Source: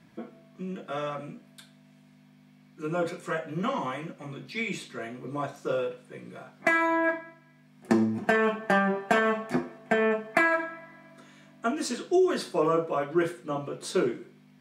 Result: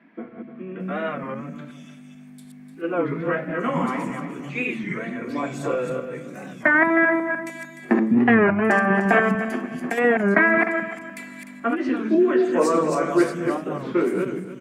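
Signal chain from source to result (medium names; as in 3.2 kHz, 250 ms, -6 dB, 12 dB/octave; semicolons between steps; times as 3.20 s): backward echo that repeats 150 ms, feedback 45%, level -4 dB; graphic EQ 250/2000/4000 Hz +9/+7/-7 dB; 9.28–9.98 s: compression, threshold -24 dBFS, peak gain reduction 9.5 dB; three bands offset in time mids, lows, highs 200/800 ms, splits 230/3500 Hz; warped record 33 1/3 rpm, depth 160 cents; trim +2 dB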